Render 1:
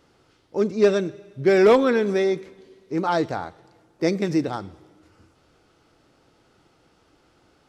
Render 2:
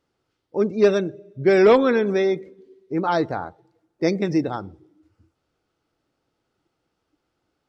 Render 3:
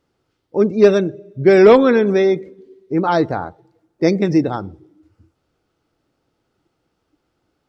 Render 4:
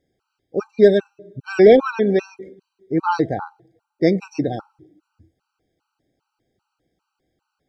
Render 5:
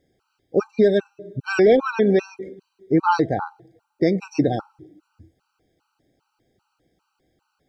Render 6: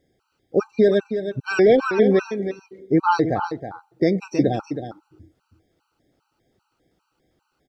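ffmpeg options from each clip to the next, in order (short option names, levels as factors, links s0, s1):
-af "afftdn=nr=16:nf=-42,volume=1.12"
-af "lowshelf=f=500:g=3.5,volume=1.5"
-af "afftfilt=real='re*gt(sin(2*PI*2.5*pts/sr)*(1-2*mod(floor(b*sr/1024/780),2)),0)':imag='im*gt(sin(2*PI*2.5*pts/sr)*(1-2*mod(floor(b*sr/1024/780),2)),0)':win_size=1024:overlap=0.75,volume=0.891"
-af "alimiter=limit=0.251:level=0:latency=1:release=415,volume=1.68"
-af "aecho=1:1:320:0.335"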